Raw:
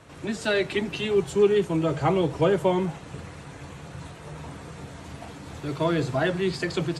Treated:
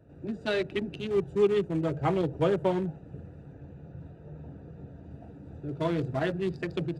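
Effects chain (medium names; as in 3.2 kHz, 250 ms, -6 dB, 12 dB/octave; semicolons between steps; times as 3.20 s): local Wiener filter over 41 samples; 3.53–5.11 s: low-pass 6.8 kHz 12 dB/octave; trim -3.5 dB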